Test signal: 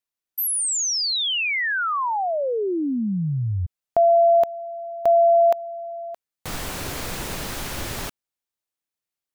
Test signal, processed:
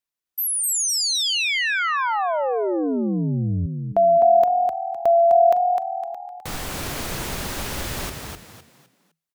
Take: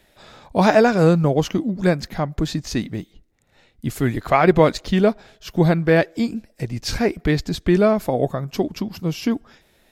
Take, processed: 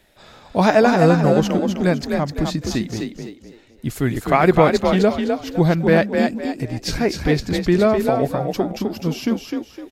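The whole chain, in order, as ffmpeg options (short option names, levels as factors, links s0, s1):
-filter_complex "[0:a]asplit=5[s0][s1][s2][s3][s4];[s1]adelay=255,afreqshift=40,volume=0.562[s5];[s2]adelay=510,afreqshift=80,volume=0.18[s6];[s3]adelay=765,afreqshift=120,volume=0.0575[s7];[s4]adelay=1020,afreqshift=160,volume=0.0184[s8];[s0][s5][s6][s7][s8]amix=inputs=5:normalize=0"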